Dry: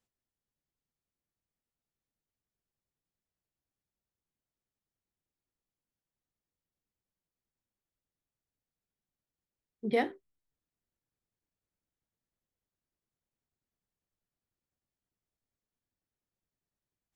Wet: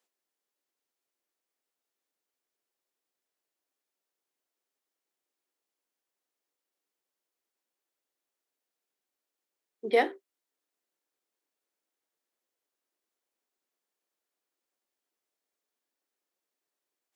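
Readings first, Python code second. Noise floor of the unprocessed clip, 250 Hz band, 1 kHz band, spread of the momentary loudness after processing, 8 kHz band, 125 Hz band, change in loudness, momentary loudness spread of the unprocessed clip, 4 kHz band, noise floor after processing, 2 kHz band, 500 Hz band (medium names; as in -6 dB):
under -85 dBFS, -3.5 dB, +5.5 dB, 11 LU, no reading, under -10 dB, +5.0 dB, 8 LU, +5.5 dB, under -85 dBFS, +5.5 dB, +5.5 dB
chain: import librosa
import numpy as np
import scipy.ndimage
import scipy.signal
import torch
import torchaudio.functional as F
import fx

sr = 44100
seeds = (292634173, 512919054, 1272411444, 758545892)

y = scipy.signal.sosfilt(scipy.signal.butter(4, 320.0, 'highpass', fs=sr, output='sos'), x)
y = y * librosa.db_to_amplitude(5.5)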